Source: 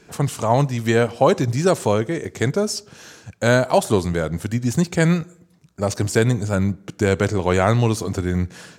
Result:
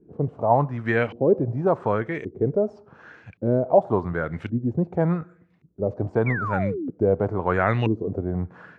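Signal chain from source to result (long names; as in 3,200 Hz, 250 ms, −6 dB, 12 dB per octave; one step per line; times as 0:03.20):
auto-filter low-pass saw up 0.89 Hz 300–2,700 Hz
sound drawn into the spectrogram fall, 0:06.26–0:06.90, 240–2,400 Hz −23 dBFS
level −6 dB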